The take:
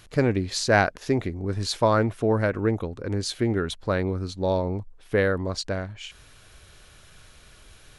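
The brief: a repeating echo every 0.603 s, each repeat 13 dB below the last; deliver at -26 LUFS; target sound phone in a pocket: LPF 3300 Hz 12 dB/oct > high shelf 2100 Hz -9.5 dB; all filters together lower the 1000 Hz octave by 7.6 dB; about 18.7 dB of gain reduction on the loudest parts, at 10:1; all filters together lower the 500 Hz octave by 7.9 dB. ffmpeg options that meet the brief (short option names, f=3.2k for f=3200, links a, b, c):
-af "equalizer=f=500:t=o:g=-8,equalizer=f=1k:t=o:g=-5,acompressor=threshold=-38dB:ratio=10,lowpass=3.3k,highshelf=f=2.1k:g=-9.5,aecho=1:1:603|1206|1809:0.224|0.0493|0.0108,volume=18.5dB"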